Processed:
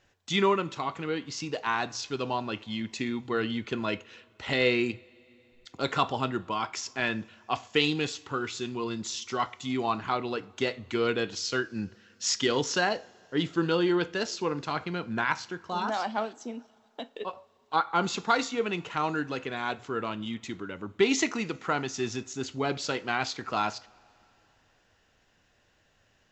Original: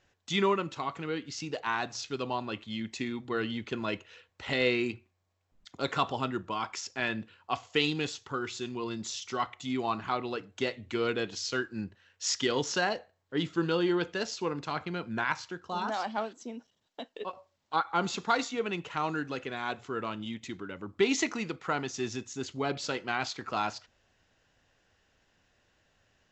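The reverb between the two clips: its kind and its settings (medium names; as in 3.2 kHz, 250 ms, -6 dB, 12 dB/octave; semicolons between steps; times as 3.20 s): two-slope reverb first 0.29 s, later 3.4 s, from -21 dB, DRR 16 dB; trim +2.5 dB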